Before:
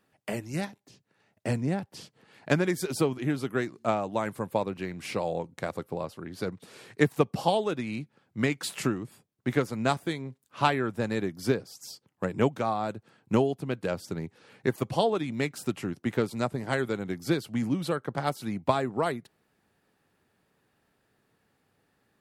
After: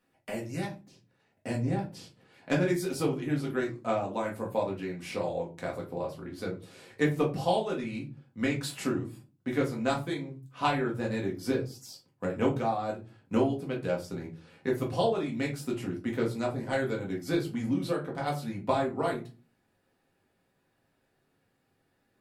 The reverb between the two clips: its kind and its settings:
rectangular room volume 130 cubic metres, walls furnished, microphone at 1.9 metres
level −7 dB

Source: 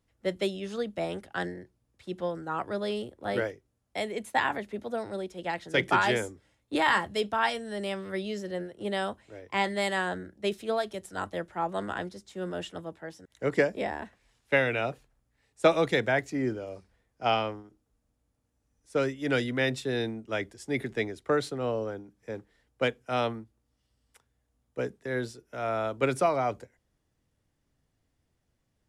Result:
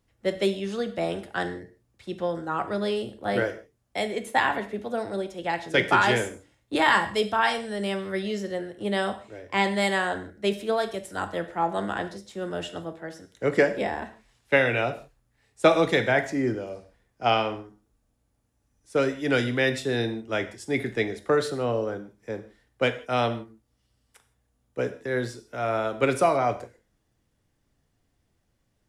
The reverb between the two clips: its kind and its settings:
reverb whose tail is shaped and stops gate 190 ms falling, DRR 8 dB
level +3.5 dB

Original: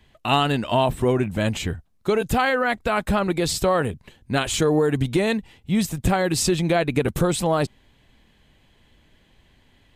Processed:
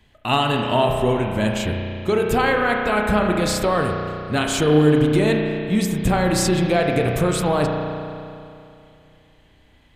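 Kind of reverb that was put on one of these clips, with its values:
spring reverb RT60 2.6 s, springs 33 ms, chirp 60 ms, DRR 1 dB

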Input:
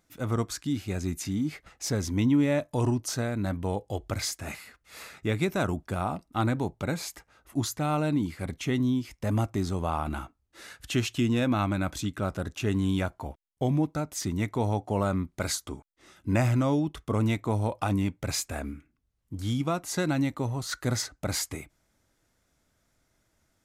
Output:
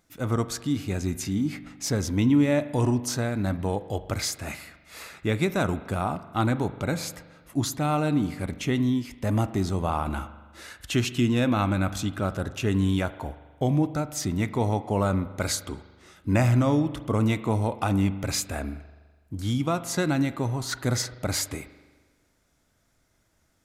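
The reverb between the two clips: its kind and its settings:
spring reverb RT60 1.4 s, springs 41 ms, chirp 40 ms, DRR 13 dB
level +2.5 dB

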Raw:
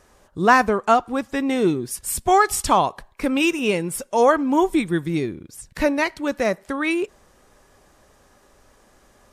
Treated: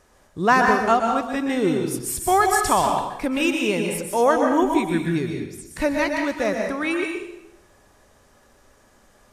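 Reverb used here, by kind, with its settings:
dense smooth reverb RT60 0.8 s, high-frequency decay 0.95×, pre-delay 110 ms, DRR 2 dB
level −2.5 dB

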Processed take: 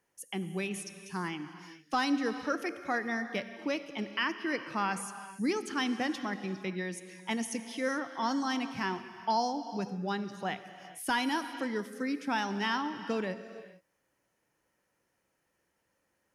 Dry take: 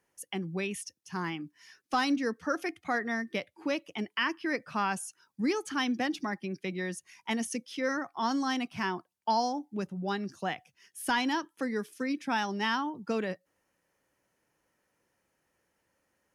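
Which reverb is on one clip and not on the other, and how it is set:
reverb whose tail is shaped and stops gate 480 ms flat, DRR 10 dB
level −1.5 dB

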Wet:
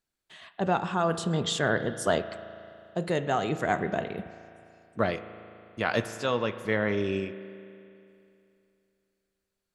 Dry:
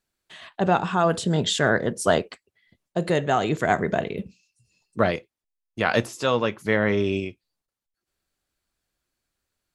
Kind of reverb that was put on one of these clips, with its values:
spring reverb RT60 2.7 s, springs 36 ms, chirp 60 ms, DRR 11.5 dB
level −5.5 dB

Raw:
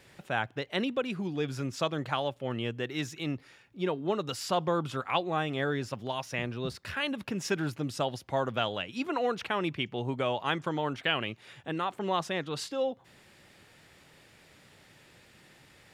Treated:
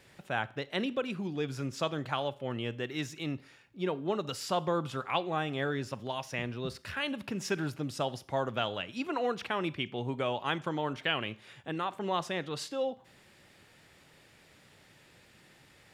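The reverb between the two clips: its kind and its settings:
four-comb reverb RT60 0.47 s, combs from 29 ms, DRR 18 dB
level −2 dB

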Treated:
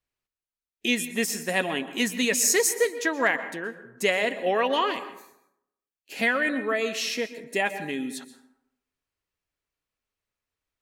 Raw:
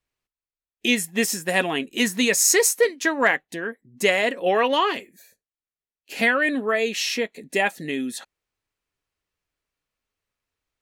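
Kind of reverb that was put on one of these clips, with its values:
dense smooth reverb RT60 0.78 s, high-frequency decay 0.5×, pre-delay 110 ms, DRR 12 dB
level −4 dB

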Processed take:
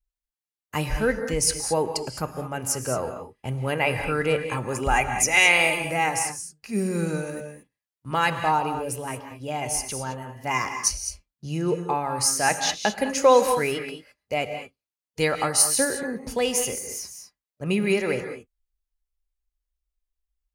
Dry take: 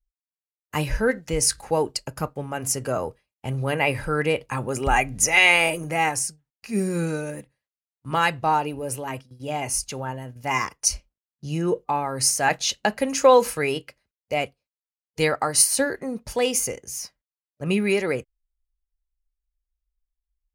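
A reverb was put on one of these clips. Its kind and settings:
reverb whose tail is shaped and stops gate 240 ms rising, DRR 7 dB
level −1.5 dB

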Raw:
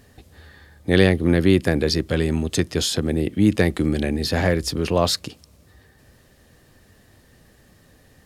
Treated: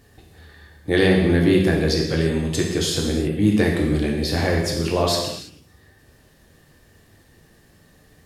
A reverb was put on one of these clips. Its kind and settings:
reverb whose tail is shaped and stops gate 360 ms falling, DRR −1.5 dB
level −3.5 dB

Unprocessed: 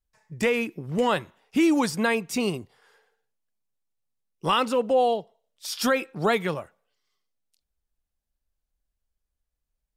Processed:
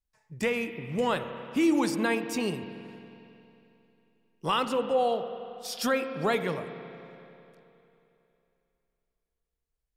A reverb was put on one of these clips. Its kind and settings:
spring reverb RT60 3 s, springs 30/45 ms, chirp 30 ms, DRR 8.5 dB
level −4.5 dB

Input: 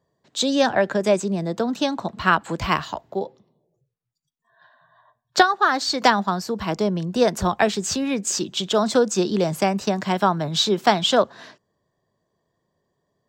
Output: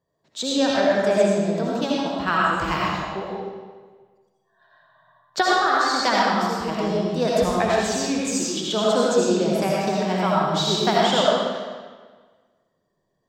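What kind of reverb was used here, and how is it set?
comb and all-pass reverb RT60 1.5 s, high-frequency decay 0.85×, pre-delay 40 ms, DRR −5.5 dB
level −6.5 dB

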